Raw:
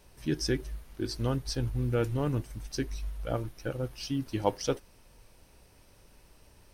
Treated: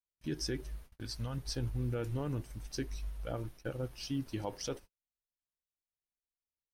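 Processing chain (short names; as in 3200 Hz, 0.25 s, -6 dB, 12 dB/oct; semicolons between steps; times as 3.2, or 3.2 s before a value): limiter -22 dBFS, peak gain reduction 9.5 dB; 0.9–1.38 bell 360 Hz -14.5 dB 0.67 oct; gate -45 dBFS, range -46 dB; gain -4 dB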